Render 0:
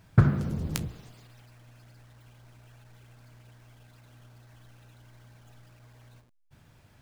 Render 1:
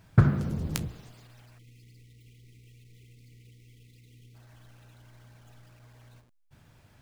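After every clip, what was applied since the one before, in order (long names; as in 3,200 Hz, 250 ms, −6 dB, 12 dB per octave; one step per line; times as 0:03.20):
time-frequency box erased 0:01.59–0:04.35, 500–1,900 Hz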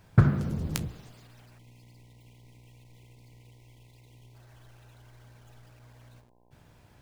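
hum with harmonics 60 Hz, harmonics 17, −66 dBFS −2 dB per octave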